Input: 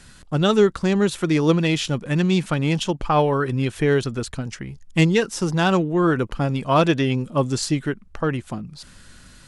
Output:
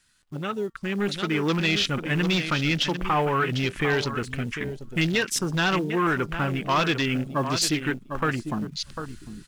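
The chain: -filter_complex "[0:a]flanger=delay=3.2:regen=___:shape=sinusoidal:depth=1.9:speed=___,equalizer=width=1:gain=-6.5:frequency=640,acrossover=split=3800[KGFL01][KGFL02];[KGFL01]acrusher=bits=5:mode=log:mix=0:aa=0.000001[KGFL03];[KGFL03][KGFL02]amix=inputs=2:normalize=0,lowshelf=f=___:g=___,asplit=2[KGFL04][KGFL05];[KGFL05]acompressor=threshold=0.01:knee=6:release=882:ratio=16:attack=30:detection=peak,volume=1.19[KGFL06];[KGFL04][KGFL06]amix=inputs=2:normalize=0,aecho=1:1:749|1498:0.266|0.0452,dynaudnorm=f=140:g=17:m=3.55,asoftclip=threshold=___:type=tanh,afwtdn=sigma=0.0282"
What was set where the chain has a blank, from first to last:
85, 0.39, 490, -12, 0.133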